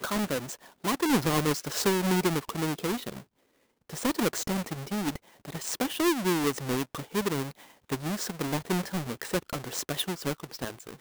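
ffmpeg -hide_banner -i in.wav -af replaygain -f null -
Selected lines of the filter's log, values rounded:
track_gain = +9.7 dB
track_peak = 0.153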